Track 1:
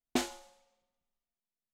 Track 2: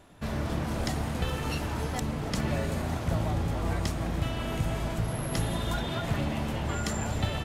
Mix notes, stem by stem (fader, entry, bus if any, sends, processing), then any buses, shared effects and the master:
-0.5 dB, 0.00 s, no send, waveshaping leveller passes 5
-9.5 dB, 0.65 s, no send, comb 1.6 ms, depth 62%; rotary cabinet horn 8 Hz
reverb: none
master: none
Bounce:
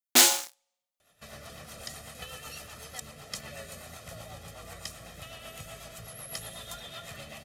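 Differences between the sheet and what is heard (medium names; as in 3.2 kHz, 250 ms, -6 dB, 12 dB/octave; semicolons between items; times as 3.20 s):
stem 2: entry 0.65 s -> 1.00 s; master: extra tilt EQ +3.5 dB/octave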